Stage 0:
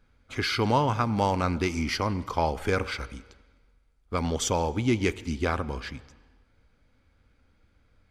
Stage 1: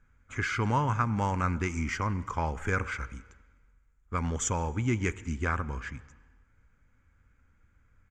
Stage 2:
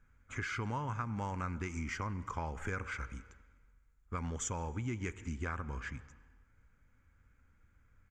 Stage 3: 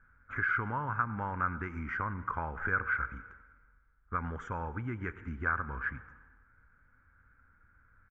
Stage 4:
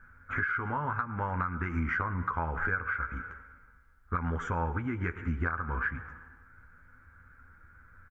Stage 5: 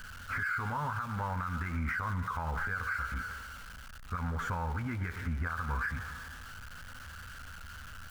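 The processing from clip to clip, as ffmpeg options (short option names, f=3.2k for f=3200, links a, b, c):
-af "firequalizer=gain_entry='entry(120,0);entry(280,-6);entry(680,-10);entry(990,-2);entry(1600,2);entry(4300,-19);entry(7000,4);entry(10000,-18)':delay=0.05:min_phase=1"
-af "acompressor=threshold=-34dB:ratio=3,volume=-2.5dB"
-af "lowpass=f=1.5k:t=q:w=4.6,aecho=1:1:106:0.0891"
-filter_complex "[0:a]acompressor=threshold=-36dB:ratio=10,asplit=2[a][b];[b]adelay=12,volume=-6.5dB[c];[a][c]amix=inputs=2:normalize=0,volume=7.5dB"
-af "aeval=exprs='val(0)+0.5*0.0075*sgn(val(0))':c=same,alimiter=level_in=1.5dB:limit=-24dB:level=0:latency=1:release=44,volume=-1.5dB,equalizer=f=350:w=1.9:g=-10"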